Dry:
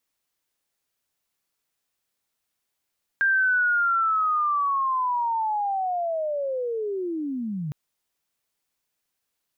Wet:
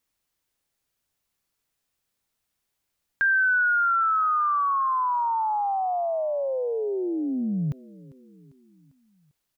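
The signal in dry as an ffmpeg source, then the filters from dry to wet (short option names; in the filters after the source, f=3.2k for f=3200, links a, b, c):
-f lavfi -i "aevalsrc='pow(10,(-17.5-9.5*t/4.51)/20)*sin(2*PI*(1600*t-1460*t*t/(2*4.51)))':d=4.51:s=44100"
-af "lowshelf=f=160:g=9,aecho=1:1:398|796|1194|1592:0.0841|0.0463|0.0255|0.014"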